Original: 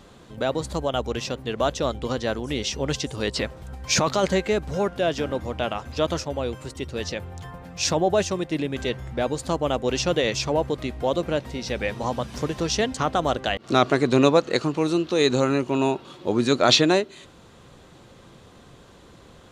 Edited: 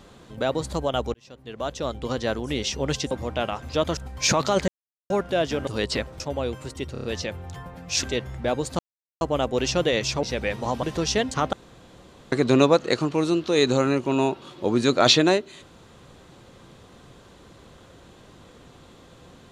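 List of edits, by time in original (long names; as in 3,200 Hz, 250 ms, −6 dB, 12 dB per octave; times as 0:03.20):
0:01.14–0:02.24: fade in
0:03.11–0:03.64: swap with 0:05.34–0:06.20
0:04.35–0:04.77: silence
0:06.92: stutter 0.03 s, 5 plays
0:07.91–0:08.76: remove
0:09.52: splice in silence 0.42 s
0:10.54–0:11.61: remove
0:12.21–0:12.46: remove
0:13.16–0:13.95: fill with room tone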